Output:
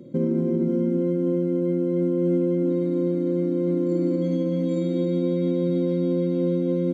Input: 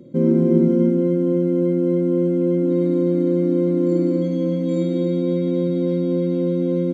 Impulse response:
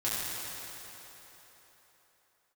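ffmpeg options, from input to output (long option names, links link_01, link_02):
-af "highpass=59,alimiter=limit=-15.5dB:level=0:latency=1:release=160"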